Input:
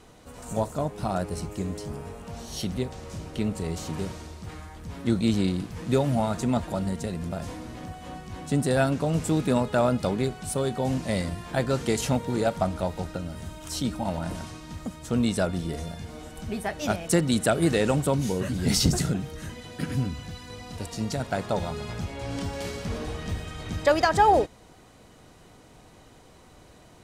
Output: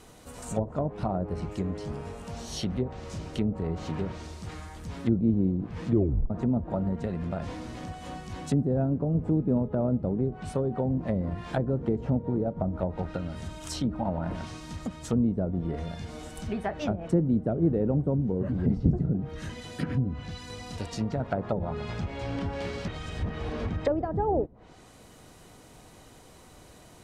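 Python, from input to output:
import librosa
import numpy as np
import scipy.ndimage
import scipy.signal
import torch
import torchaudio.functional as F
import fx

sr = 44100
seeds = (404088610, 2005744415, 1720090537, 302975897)

y = fx.edit(x, sr, fx.tape_stop(start_s=5.9, length_s=0.4),
    fx.reverse_span(start_s=22.88, length_s=0.81), tone=tone)
y = fx.env_lowpass_down(y, sr, base_hz=420.0, full_db=-22.0)
y = fx.high_shelf(y, sr, hz=9500.0, db=11.0)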